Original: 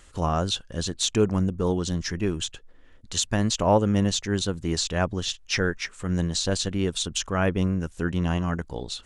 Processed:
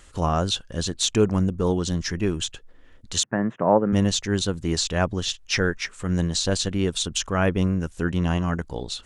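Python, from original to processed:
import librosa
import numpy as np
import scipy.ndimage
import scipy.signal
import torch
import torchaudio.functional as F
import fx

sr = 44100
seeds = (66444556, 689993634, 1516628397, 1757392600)

y = fx.ellip_bandpass(x, sr, low_hz=140.0, high_hz=1800.0, order=3, stop_db=40, at=(3.23, 3.93))
y = y * 10.0 ** (2.0 / 20.0)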